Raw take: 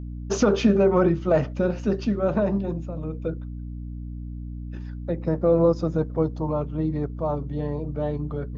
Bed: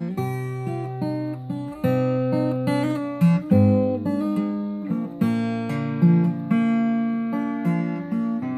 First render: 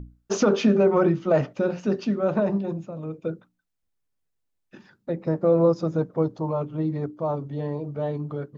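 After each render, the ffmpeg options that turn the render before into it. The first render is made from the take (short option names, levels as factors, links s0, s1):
-af "bandreject=f=60:t=h:w=6,bandreject=f=120:t=h:w=6,bandreject=f=180:t=h:w=6,bandreject=f=240:t=h:w=6,bandreject=f=300:t=h:w=6"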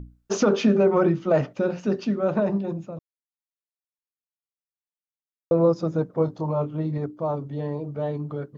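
-filter_complex "[0:a]asettb=1/sr,asplit=3[s0][s1][s2];[s0]atrim=end=6.154[s3];[s1]atrim=start=6.15:end=6.98,asetpts=PTS-STARTPTS,afade=t=in:d=0.004:c=qsin,afade=t=out:st=0.826:d=0.004:c=qsin,asplit=2[s4][s5];[s5]adelay=27,volume=0.447[s6];[s4][s6]amix=inputs=2:normalize=0,atrim=end_sample=36603[s7];[s2]atrim=start=6.976[s8];[s3][s7]acrossfade=d=0.004:c1=hsin:c2=qsin[s9];[s9][s8]acrossfade=d=0.004:c1=qsin:c2=hsin,asplit=3[s10][s11][s12];[s10]atrim=end=2.99,asetpts=PTS-STARTPTS,afade=t=out:st=2.986:d=0.004:c=hsin[s13];[s11]atrim=start=2.99:end=5.51,asetpts=PTS-STARTPTS,volume=0[s14];[s12]atrim=start=5.51,asetpts=PTS-STARTPTS,afade=t=in:d=0.004:c=hsin[s15];[s13][s14][s15]concat=n=3:v=0:a=1"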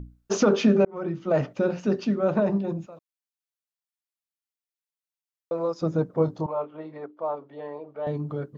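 -filter_complex "[0:a]asettb=1/sr,asplit=3[s0][s1][s2];[s0]atrim=end=2.864[s3];[s1]atrim=start=2.86:end=5.82,asetpts=PTS-STARTPTS,afade=t=in:d=0.004:c=qsin,afade=t=out:st=2.956:d=0.004:c=qsin,highpass=f=1100:p=1[s4];[s2]atrim=start=5.816[s5];[s3][s4]acrossfade=d=0.004:c1=hsin:c2=qsin[s6];[s6][s5]acrossfade=d=0.004:c1=qsin:c2=hsin,asettb=1/sr,asplit=3[s7][s8][s9];[s7]atrim=end=6.464[s10];[s8]atrim=start=6.46:end=8.07,asetpts=PTS-STARTPTS,afade=t=in:d=0.004:c=qsin,afade=t=out:st=1.606:d=0.004:c=qsin,highpass=540,lowpass=2700[s11];[s9]atrim=start=8.066[s12];[s10][s11]acrossfade=d=0.004:c1=hsin:c2=qsin[s13];[s13][s12]acrossfade=d=0.004:c1=qsin:c2=hsin,asplit=2[s14][s15];[s14]atrim=end=0.85,asetpts=PTS-STARTPTS,afade=t=out:st=0.846:d=0.004:c=hsin[s16];[s15]atrim=start=0.85,asetpts=PTS-STARTPTS,afade=t=in:d=0.66[s17];[s16][s17]concat=n=2:v=0:a=1"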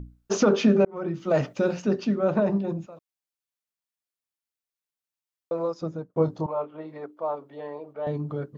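-filter_complex "[0:a]asettb=1/sr,asplit=3[s0][s1][s2];[s0]atrim=end=1.144[s3];[s1]atrim=start=1.14:end=1.82,asetpts=PTS-STARTPTS,afade=t=in:d=0.004:c=qsin,afade=t=out:st=0.676:d=0.004:c=qsin,highshelf=f=3500:g=9.5[s4];[s2]atrim=start=1.816[s5];[s3][s4]acrossfade=d=0.004:c1=hsin:c2=qsin[s6];[s6][s5]acrossfade=d=0.004:c1=qsin:c2=hsin,asettb=1/sr,asplit=3[s7][s8][s9];[s7]atrim=end=6.884[s10];[s8]atrim=start=6.88:end=7.93,asetpts=PTS-STARTPTS,afade=t=in:d=0.004:c=qsin,afade=t=out:st=1.046:d=0.004:c=qsin,highshelf=f=4200:g=5.5[s11];[s9]atrim=start=7.926[s12];[s10][s11]acrossfade=d=0.004:c1=hsin:c2=qsin[s13];[s13][s12]acrossfade=d=0.004:c1=qsin:c2=hsin,asplit=2[s14][s15];[s14]atrim=end=6.16,asetpts=PTS-STARTPTS,afade=t=out:st=5.61:d=0.55[s16];[s15]atrim=start=6.16,asetpts=PTS-STARTPTS,afade=t=in:d=0.004:c=hsin[s17];[s16][s17]concat=n=2:v=0:a=1"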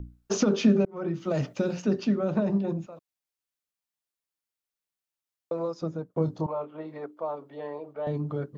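-filter_complex "[0:a]acrossover=split=320|3000[s0][s1][s2];[s1]acompressor=threshold=0.0355:ratio=6[s3];[s0][s3][s2]amix=inputs=3:normalize=0"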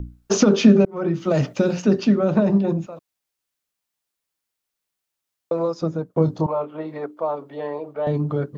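-af "volume=2.51"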